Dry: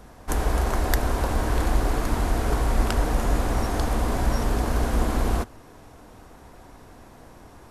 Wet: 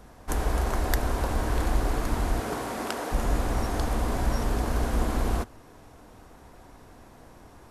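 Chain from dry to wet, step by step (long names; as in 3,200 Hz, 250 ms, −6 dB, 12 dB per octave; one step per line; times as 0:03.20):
0:02.39–0:03.11: high-pass filter 130 Hz → 350 Hz 12 dB per octave
level −3 dB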